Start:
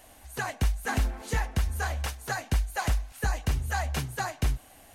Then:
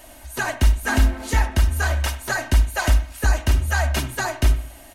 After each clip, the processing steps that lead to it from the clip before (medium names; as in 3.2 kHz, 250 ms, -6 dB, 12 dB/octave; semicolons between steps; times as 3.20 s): comb 3.2 ms, depth 62%; on a send at -11 dB: reverberation, pre-delay 53 ms; on the sum: trim +7 dB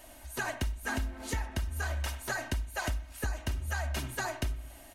compression 10:1, threshold -22 dBFS, peak gain reduction 11.5 dB; trim -7.5 dB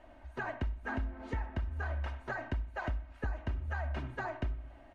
low-pass 1.7 kHz 12 dB/octave; trim -2 dB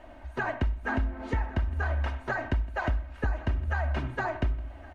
delay 1116 ms -21 dB; trim +7.5 dB